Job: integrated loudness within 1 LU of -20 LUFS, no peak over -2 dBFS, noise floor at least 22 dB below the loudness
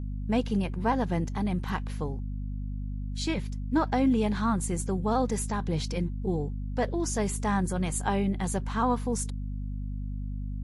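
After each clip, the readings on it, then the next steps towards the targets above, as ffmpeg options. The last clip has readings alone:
hum 50 Hz; highest harmonic 250 Hz; hum level -31 dBFS; loudness -30.0 LUFS; peak level -14.0 dBFS; loudness target -20.0 LUFS
-> -af "bandreject=f=50:t=h:w=6,bandreject=f=100:t=h:w=6,bandreject=f=150:t=h:w=6,bandreject=f=200:t=h:w=6,bandreject=f=250:t=h:w=6"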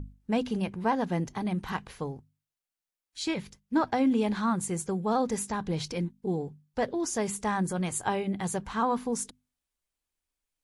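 hum not found; loudness -30.5 LUFS; peak level -14.5 dBFS; loudness target -20.0 LUFS
-> -af "volume=3.35"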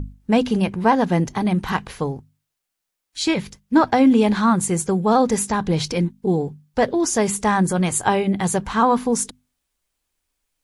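loudness -20.0 LUFS; peak level -4.0 dBFS; noise floor -81 dBFS

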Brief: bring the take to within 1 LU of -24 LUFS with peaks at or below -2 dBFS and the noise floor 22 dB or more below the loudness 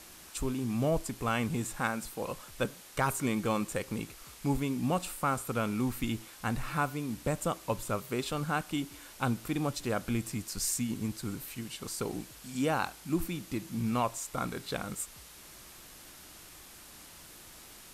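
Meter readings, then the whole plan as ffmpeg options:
noise floor -52 dBFS; noise floor target -56 dBFS; loudness -34.0 LUFS; peak level -16.5 dBFS; loudness target -24.0 LUFS
-> -af "afftdn=nr=6:nf=-52"
-af "volume=3.16"

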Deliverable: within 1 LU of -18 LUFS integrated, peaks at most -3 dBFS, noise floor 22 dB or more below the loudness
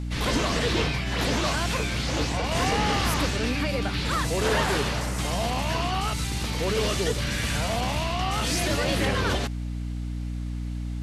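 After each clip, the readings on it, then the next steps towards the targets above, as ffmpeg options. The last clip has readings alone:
hum 60 Hz; highest harmonic 300 Hz; hum level -28 dBFS; loudness -26.0 LUFS; peak level -12.0 dBFS; loudness target -18.0 LUFS
-> -af "bandreject=f=60:t=h:w=6,bandreject=f=120:t=h:w=6,bandreject=f=180:t=h:w=6,bandreject=f=240:t=h:w=6,bandreject=f=300:t=h:w=6"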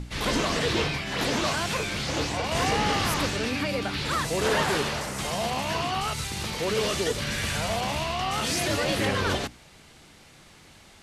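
hum not found; loudness -26.5 LUFS; peak level -13.5 dBFS; loudness target -18.0 LUFS
-> -af "volume=2.66"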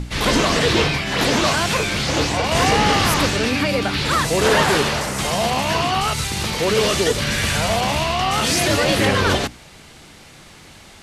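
loudness -18.0 LUFS; peak level -5.0 dBFS; noise floor -44 dBFS

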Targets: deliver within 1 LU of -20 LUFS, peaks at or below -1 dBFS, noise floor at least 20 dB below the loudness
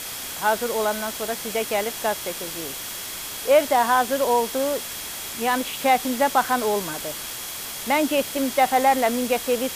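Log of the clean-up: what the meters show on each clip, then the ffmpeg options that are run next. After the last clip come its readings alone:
steady tone 3.3 kHz; tone level -43 dBFS; noise floor -33 dBFS; noise floor target -43 dBFS; loudness -23.0 LUFS; peak level -6.5 dBFS; loudness target -20.0 LUFS
-> -af "bandreject=f=3300:w=30"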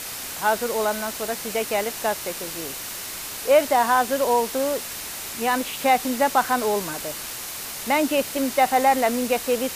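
steady tone not found; noise floor -34 dBFS; noise floor target -43 dBFS
-> -af "afftdn=nr=9:nf=-34"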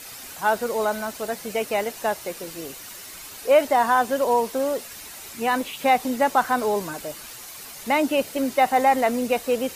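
noise floor -40 dBFS; noise floor target -43 dBFS
-> -af "afftdn=nr=6:nf=-40"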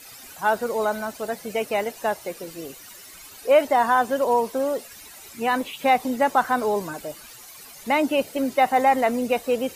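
noise floor -44 dBFS; loudness -23.0 LUFS; peak level -7.0 dBFS; loudness target -20.0 LUFS
-> -af "volume=1.41"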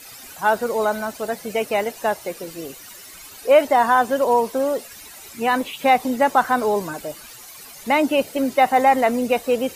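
loudness -20.0 LUFS; peak level -4.0 dBFS; noise floor -41 dBFS

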